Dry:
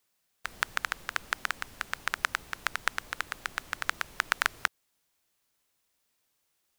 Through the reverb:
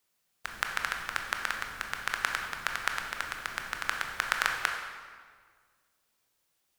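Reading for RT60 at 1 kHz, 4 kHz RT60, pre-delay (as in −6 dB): 1.7 s, 1.3 s, 17 ms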